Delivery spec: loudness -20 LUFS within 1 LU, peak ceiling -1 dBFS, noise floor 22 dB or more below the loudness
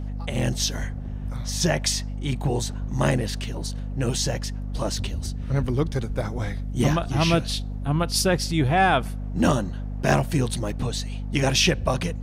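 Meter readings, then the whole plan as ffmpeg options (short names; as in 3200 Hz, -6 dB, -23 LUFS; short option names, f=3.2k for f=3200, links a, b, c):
hum 50 Hz; harmonics up to 250 Hz; hum level -28 dBFS; loudness -24.5 LUFS; peak -6.5 dBFS; loudness target -20.0 LUFS
-> -af "bandreject=f=50:t=h:w=6,bandreject=f=100:t=h:w=6,bandreject=f=150:t=h:w=6,bandreject=f=200:t=h:w=6,bandreject=f=250:t=h:w=6"
-af "volume=4.5dB"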